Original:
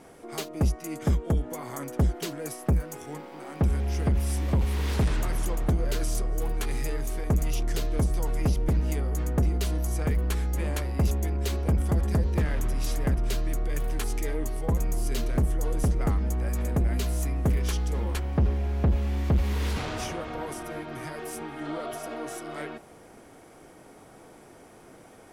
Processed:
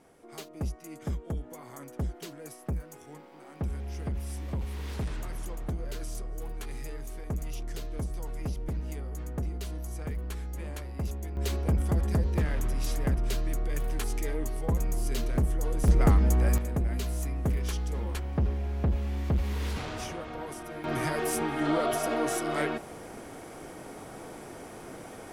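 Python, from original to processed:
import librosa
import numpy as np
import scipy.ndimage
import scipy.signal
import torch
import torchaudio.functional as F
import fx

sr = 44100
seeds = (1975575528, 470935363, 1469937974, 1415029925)

y = fx.gain(x, sr, db=fx.steps((0.0, -9.0), (11.37, -2.0), (15.88, 4.5), (16.58, -4.0), (20.84, 7.0)))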